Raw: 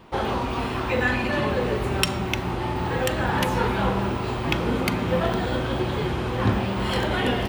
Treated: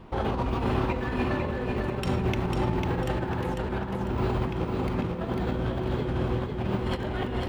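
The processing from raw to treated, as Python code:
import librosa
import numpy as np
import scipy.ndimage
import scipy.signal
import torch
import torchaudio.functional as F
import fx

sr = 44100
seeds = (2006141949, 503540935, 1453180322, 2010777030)

y = fx.tilt_eq(x, sr, slope=-2.0)
y = fx.over_compress(y, sr, threshold_db=-23.0, ratio=-0.5)
y = fx.echo_feedback(y, sr, ms=498, feedback_pct=36, wet_db=-4)
y = y * 10.0 ** (-5.5 / 20.0)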